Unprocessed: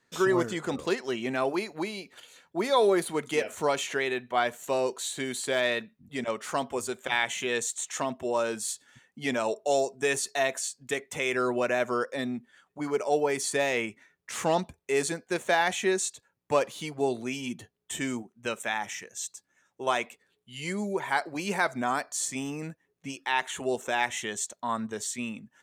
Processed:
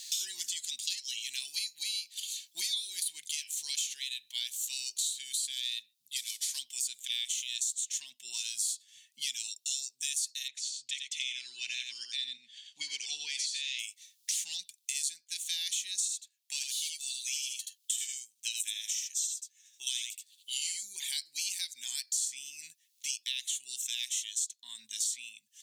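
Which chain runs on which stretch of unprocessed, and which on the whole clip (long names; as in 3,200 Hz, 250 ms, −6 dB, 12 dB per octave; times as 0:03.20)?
0:06.16–0:06.59: variable-slope delta modulation 64 kbit/s + high-pass filter 330 Hz 24 dB per octave + notch filter 2,800 Hz
0:10.48–0:13.79: low-pass filter 3,200 Hz + single-tap delay 88 ms −5.5 dB
0:16.01–0:20.83: high-pass filter 1,100 Hz 6 dB per octave + single-tap delay 77 ms −4 dB
whole clip: inverse Chebyshev high-pass filter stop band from 1,400 Hz, stop band 50 dB; multiband upward and downward compressor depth 100%; level +5.5 dB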